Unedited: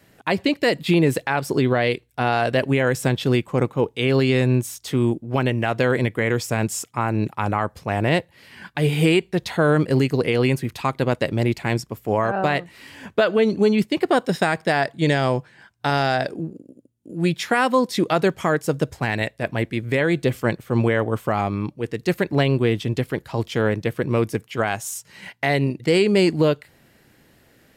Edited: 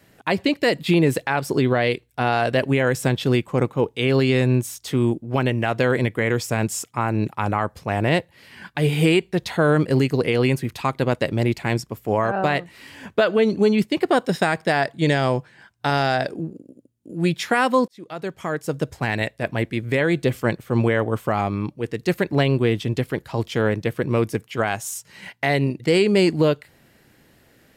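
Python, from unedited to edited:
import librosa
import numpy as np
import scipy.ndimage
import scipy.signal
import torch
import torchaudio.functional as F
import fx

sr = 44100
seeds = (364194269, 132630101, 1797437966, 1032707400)

y = fx.edit(x, sr, fx.fade_in_span(start_s=17.88, length_s=1.22), tone=tone)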